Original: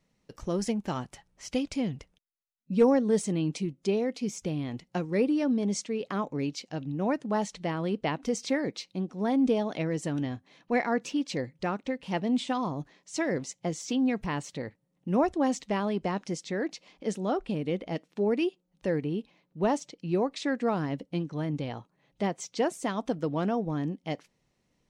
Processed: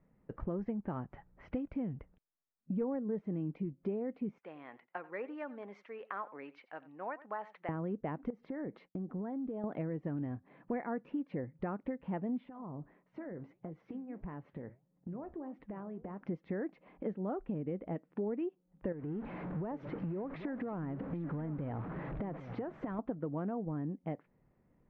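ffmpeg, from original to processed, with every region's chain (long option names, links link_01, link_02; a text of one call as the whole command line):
ffmpeg -i in.wav -filter_complex "[0:a]asettb=1/sr,asplit=3[link_01][link_02][link_03];[link_01]atrim=end=4.384[link_04];[link_02]atrim=start=4.38:end=7.69,asetpts=PTS-STARTPTS,afade=type=in:duration=0.004:curve=qsin,afade=type=out:start_time=3.306:duration=0.004:curve=qsin,highpass=1100,aecho=1:1:89:0.112,atrim=end_sample=145971[link_05];[link_03]atrim=start=7.686[link_06];[link_04][link_05]acrossfade=duration=0.004:curve1=hsin:curve2=qsin[link_07];[link_07][link_06]acrossfade=duration=0.004:curve1=qsin:curve2=hsin,asettb=1/sr,asplit=3[link_08][link_09][link_10];[link_08]atrim=end=8.304[link_11];[link_09]atrim=start=8.3:end=9.64,asetpts=PTS-STARTPTS,afade=type=in:duration=0.004:curve=qsin,afade=type=out:start_time=1.336:duration=0.004:curve=qsin,agate=range=-33dB:threshold=-47dB:ratio=3:release=100:detection=peak,equalizer=frequency=2500:width_type=o:width=0.31:gain=-5.5,acompressor=threshold=-36dB:ratio=12:attack=3.2:release=140:knee=1:detection=peak[link_12];[link_10]atrim=start=9.636[link_13];[link_11][link_12]acrossfade=duration=0.004:curve1=hsin:curve2=qsin[link_14];[link_14][link_13]acrossfade=duration=0.004:curve1=qsin:curve2=hsin,asettb=1/sr,asplit=3[link_15][link_16][link_17];[link_15]atrim=end=12.494[link_18];[link_16]atrim=start=12.49:end=16.23,asetpts=PTS-STARTPTS,afade=type=in:duration=0.004:curve=qsin,afade=type=out:start_time=3.736:duration=0.004:curve=qsin,highshelf=frequency=4600:gain=-9.5,acompressor=threshold=-38dB:ratio=16:attack=3.2:release=140:knee=1:detection=peak,flanger=delay=3.9:depth=9.7:regen=-74:speed=1.6:shape=sinusoidal[link_19];[link_17]atrim=start=16.226[link_20];[link_18][link_19]acrossfade=duration=0.004:curve1=hsin:curve2=qsin[link_21];[link_21][link_20]acrossfade=duration=0.004:curve1=qsin:curve2=hsin,asettb=1/sr,asplit=3[link_22][link_23][link_24];[link_22]atrim=end=18.924[link_25];[link_23]atrim=start=18.92:end=22.99,asetpts=PTS-STARTPTS,afade=type=in:duration=0.004:curve=qsin,afade=type=out:start_time=4.066:duration=0.004:curve=qsin,aeval=exprs='val(0)+0.5*0.0133*sgn(val(0))':channel_layout=same,acompressor=threshold=-33dB:ratio=12:attack=3.2:release=140:knee=1:detection=peak,aecho=1:1:791:0.178,atrim=end_sample=179487[link_26];[link_24]atrim=start=22.986[link_27];[link_25][link_26]acrossfade=duration=0.004:curve1=hsin:curve2=qsin[link_28];[link_28][link_27]acrossfade=duration=0.004:curve1=qsin:curve2=hsin,lowpass=frequency=1800:width=0.5412,lowpass=frequency=1800:width=1.3066,lowshelf=frequency=490:gain=5,acompressor=threshold=-36dB:ratio=4" out.wav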